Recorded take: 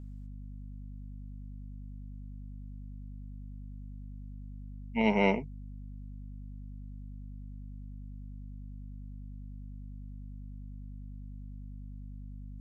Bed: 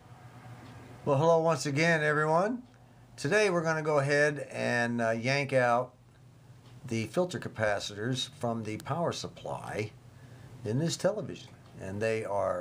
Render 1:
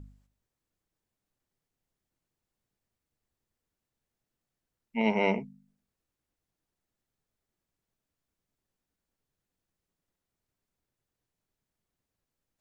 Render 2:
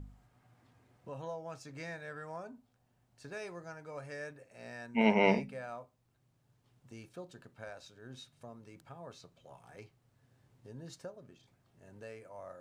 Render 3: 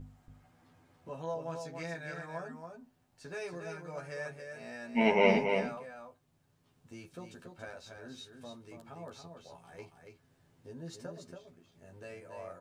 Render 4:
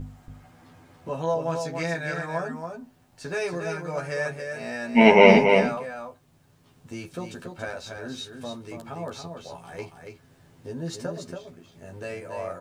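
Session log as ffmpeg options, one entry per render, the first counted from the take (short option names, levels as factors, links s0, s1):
-af "bandreject=f=50:t=h:w=4,bandreject=f=100:t=h:w=4,bandreject=f=150:t=h:w=4,bandreject=f=200:t=h:w=4,bandreject=f=250:t=h:w=4"
-filter_complex "[1:a]volume=0.126[s0];[0:a][s0]amix=inputs=2:normalize=0"
-filter_complex "[0:a]asplit=2[s0][s1];[s1]adelay=12,volume=0.75[s2];[s0][s2]amix=inputs=2:normalize=0,aecho=1:1:281:0.501"
-af "volume=3.98,alimiter=limit=0.891:level=0:latency=1"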